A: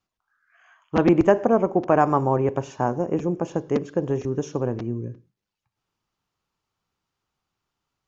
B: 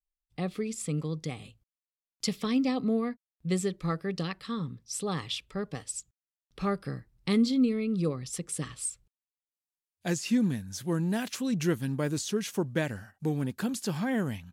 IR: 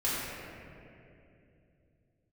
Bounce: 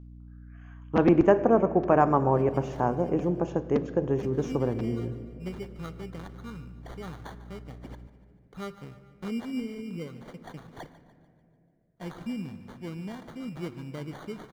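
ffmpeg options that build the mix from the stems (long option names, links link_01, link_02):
-filter_complex "[0:a]aeval=exprs='val(0)+0.00794*(sin(2*PI*60*n/s)+sin(2*PI*2*60*n/s)/2+sin(2*PI*3*60*n/s)/3+sin(2*PI*4*60*n/s)/4+sin(2*PI*5*60*n/s)/5)':channel_layout=same,volume=-3dB,asplit=3[link_01][link_02][link_03];[link_02]volume=-22dB[link_04];[1:a]acrusher=samples=17:mix=1:aa=0.000001,adelay=1950,volume=-9dB,asplit=3[link_05][link_06][link_07];[link_06]volume=-22dB[link_08];[link_07]volume=-16dB[link_09];[link_03]apad=whole_len=726427[link_10];[link_05][link_10]sidechaincompress=threshold=-33dB:ratio=8:attack=39:release=132[link_11];[2:a]atrim=start_sample=2205[link_12];[link_04][link_08]amix=inputs=2:normalize=0[link_13];[link_13][link_12]afir=irnorm=-1:irlink=0[link_14];[link_09]aecho=0:1:147|294|441|588|735|882|1029:1|0.5|0.25|0.125|0.0625|0.0312|0.0156[link_15];[link_01][link_11][link_14][link_15]amix=inputs=4:normalize=0,highshelf=frequency=5400:gain=-11.5"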